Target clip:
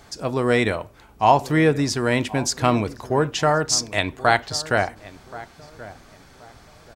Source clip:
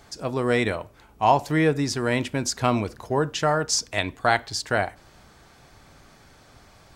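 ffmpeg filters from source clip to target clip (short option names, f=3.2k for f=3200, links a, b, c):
-filter_complex "[0:a]asplit=2[a][b];[b]adelay=1078,lowpass=f=1.4k:p=1,volume=-17dB,asplit=2[c][d];[d]adelay=1078,lowpass=f=1.4k:p=1,volume=0.32,asplit=2[e][f];[f]adelay=1078,lowpass=f=1.4k:p=1,volume=0.32[g];[a][c][e][g]amix=inputs=4:normalize=0,volume=3dB"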